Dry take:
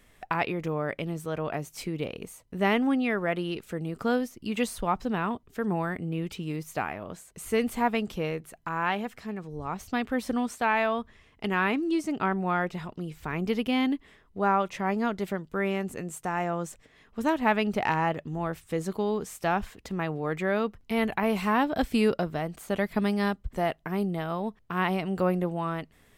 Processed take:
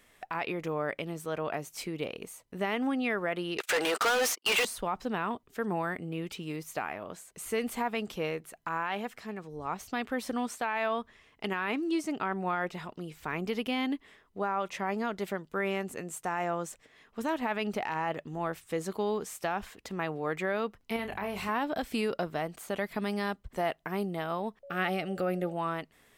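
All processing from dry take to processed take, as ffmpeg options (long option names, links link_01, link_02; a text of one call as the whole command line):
ffmpeg -i in.wav -filter_complex "[0:a]asettb=1/sr,asplit=3[link_01][link_02][link_03];[link_01]atrim=end=3.584[link_04];[link_02]atrim=start=3.58:end=4.65,asetpts=PTS-STARTPTS,afade=type=in:duration=0.004:curve=qsin,afade=type=out:start_time=1.066:duration=0.004:curve=qsin,highpass=570,agate=range=-42dB:threshold=-52dB:ratio=16:release=100:detection=peak,asplit=2[link_05][link_06];[link_06]highpass=frequency=720:poles=1,volume=36dB,asoftclip=type=tanh:threshold=-18dB[link_07];[link_05][link_07]amix=inputs=2:normalize=0,lowpass=frequency=6200:poles=1,volume=-6dB[link_08];[link_03]atrim=start=4.646[link_09];[link_04][link_08]acrossfade=duration=0.004:curve1=hsin:curve2=qsin[link_10];[link_10][link_09]acrossfade=duration=0.004:curve1=qsin:curve2=hsin,asettb=1/sr,asplit=3[link_11][link_12][link_13];[link_11]atrim=end=20.964[link_14];[link_12]atrim=start=20.96:end=21.49,asetpts=PTS-STARTPTS,afade=type=in:duration=0.004:curve=qsin,afade=type=out:start_time=0.526:duration=0.004:curve=qsin,aeval=exprs='val(0)+0.0158*(sin(2*PI*50*n/s)+sin(2*PI*2*50*n/s)/2+sin(2*PI*3*50*n/s)/3+sin(2*PI*4*50*n/s)/4+sin(2*PI*5*50*n/s)/5)':channel_layout=same,acompressor=threshold=-30dB:ratio=2.5:attack=3.2:release=140:knee=1:detection=peak,asplit=2[link_15][link_16];[link_16]adelay=30,volume=-8dB[link_17];[link_15][link_17]amix=inputs=2:normalize=0,atrim=end_sample=23373[link_18];[link_13]atrim=start=21.486[link_19];[link_14][link_18]acrossfade=duration=0.004:curve1=hsin:curve2=qsin[link_20];[link_20][link_19]acrossfade=duration=0.004:curve1=qsin:curve2=hsin,asettb=1/sr,asplit=3[link_21][link_22][link_23];[link_21]atrim=end=24.634[link_24];[link_22]atrim=start=24.63:end=25.53,asetpts=PTS-STARTPTS,afade=type=in:duration=0.004:curve=qsin,afade=type=out:start_time=0.896:duration=0.004:curve=qsin,asuperstop=centerf=1000:order=8:qfactor=3.8,aeval=exprs='val(0)+0.00631*sin(2*PI*560*n/s)':channel_layout=same[link_25];[link_23]atrim=start=25.526[link_26];[link_24][link_25]acrossfade=duration=0.004:curve1=hsin:curve2=qsin[link_27];[link_27][link_26]acrossfade=duration=0.004:curve1=qsin:curve2=hsin,lowshelf=frequency=200:gain=-11.5,alimiter=limit=-21dB:level=0:latency=1:release=66" out.wav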